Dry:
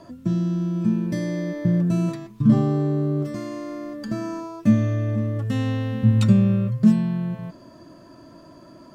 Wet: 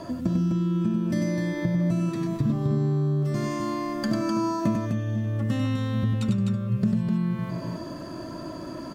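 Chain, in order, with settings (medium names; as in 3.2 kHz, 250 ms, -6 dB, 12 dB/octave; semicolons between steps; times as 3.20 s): compression 10:1, threshold -31 dBFS, peak gain reduction 21 dB; on a send: loudspeakers at several distances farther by 33 m -5 dB, 87 m -5 dB; on the sum: trim +8 dB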